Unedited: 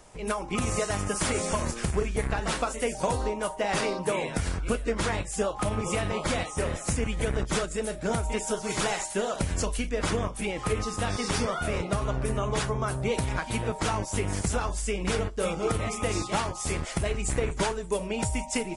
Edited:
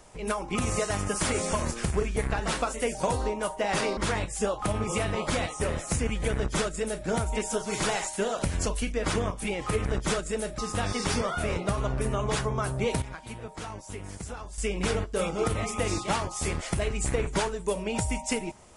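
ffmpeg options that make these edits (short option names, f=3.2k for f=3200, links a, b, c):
-filter_complex "[0:a]asplit=6[a][b][c][d][e][f];[a]atrim=end=3.972[g];[b]atrim=start=4.938:end=10.822[h];[c]atrim=start=7.298:end=8.032[i];[d]atrim=start=10.818:end=13.262[j];[e]atrim=start=13.258:end=14.822,asetpts=PTS-STARTPTS,volume=-10.5dB[k];[f]atrim=start=14.818[l];[g][h]acrossfade=d=0.004:c1=hsin:c2=hsin[m];[m][i]acrossfade=d=0.004:c1=hsin:c2=hsin[n];[n][j]acrossfade=d=0.004:c1=hsin:c2=hsin[o];[o][k]acrossfade=d=0.004:c1=hsin:c2=hsin[p];[p][l]acrossfade=d=0.004:c1=hsin:c2=hsin"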